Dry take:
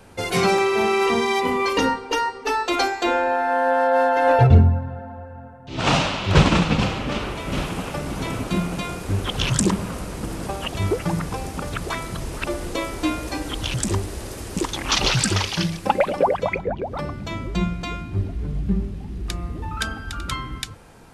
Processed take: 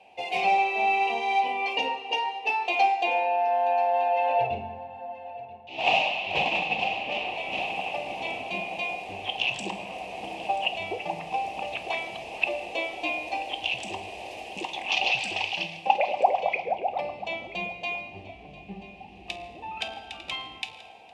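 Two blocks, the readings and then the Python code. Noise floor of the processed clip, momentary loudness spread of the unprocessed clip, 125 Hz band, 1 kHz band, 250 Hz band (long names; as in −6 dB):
−47 dBFS, 13 LU, −26.5 dB, −1.5 dB, −18.0 dB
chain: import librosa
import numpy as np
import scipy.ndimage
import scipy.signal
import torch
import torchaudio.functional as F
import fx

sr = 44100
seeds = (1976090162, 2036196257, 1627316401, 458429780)

p1 = fx.rider(x, sr, range_db=10, speed_s=0.5)
p2 = x + (p1 * librosa.db_to_amplitude(-2.5))
p3 = fx.double_bandpass(p2, sr, hz=1400.0, octaves=1.8)
p4 = p3 + 10.0 ** (-18.0 / 20.0) * np.pad(p3, (int(983 * sr / 1000.0), 0))[:len(p3)]
y = fx.rev_fdn(p4, sr, rt60_s=1.1, lf_ratio=1.1, hf_ratio=0.95, size_ms=89.0, drr_db=8.0)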